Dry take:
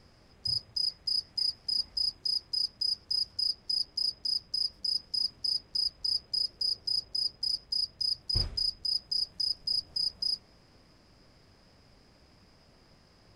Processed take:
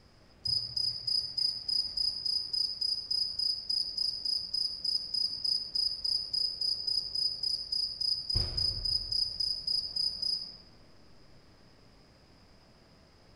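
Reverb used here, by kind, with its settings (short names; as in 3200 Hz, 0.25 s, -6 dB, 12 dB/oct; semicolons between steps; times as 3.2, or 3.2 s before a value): digital reverb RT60 2.7 s, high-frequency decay 0.4×, pre-delay 15 ms, DRR 3 dB; gain -1 dB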